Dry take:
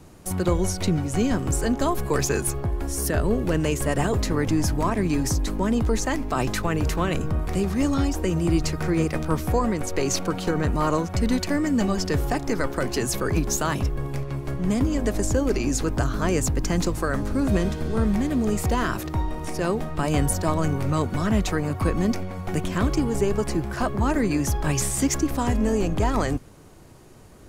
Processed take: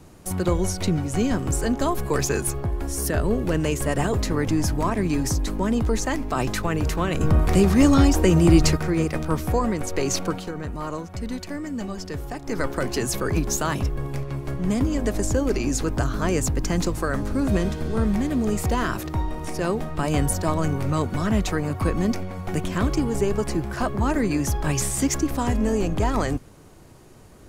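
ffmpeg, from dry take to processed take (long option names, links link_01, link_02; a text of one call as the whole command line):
ffmpeg -i in.wav -filter_complex "[0:a]asplit=3[link_01][link_02][link_03];[link_01]afade=type=out:start_time=7.2:duration=0.02[link_04];[link_02]acontrast=87,afade=type=in:start_time=7.2:duration=0.02,afade=type=out:start_time=8.76:duration=0.02[link_05];[link_03]afade=type=in:start_time=8.76:duration=0.02[link_06];[link_04][link_05][link_06]amix=inputs=3:normalize=0,asplit=3[link_07][link_08][link_09];[link_07]atrim=end=10.48,asetpts=PTS-STARTPTS,afade=type=out:start_time=10.31:duration=0.17:silence=0.398107[link_10];[link_08]atrim=start=10.48:end=12.43,asetpts=PTS-STARTPTS,volume=-8dB[link_11];[link_09]atrim=start=12.43,asetpts=PTS-STARTPTS,afade=type=in:duration=0.17:silence=0.398107[link_12];[link_10][link_11][link_12]concat=n=3:v=0:a=1" out.wav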